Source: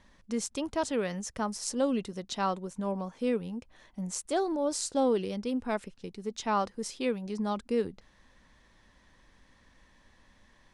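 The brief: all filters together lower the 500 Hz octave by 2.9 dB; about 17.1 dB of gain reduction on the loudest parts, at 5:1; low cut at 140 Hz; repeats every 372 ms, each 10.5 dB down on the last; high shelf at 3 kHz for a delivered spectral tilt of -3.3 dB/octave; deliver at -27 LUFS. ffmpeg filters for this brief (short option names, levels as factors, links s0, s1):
-af "highpass=140,equalizer=f=500:t=o:g=-3.5,highshelf=f=3000:g=6.5,acompressor=threshold=0.00562:ratio=5,aecho=1:1:372|744|1116:0.299|0.0896|0.0269,volume=9.44"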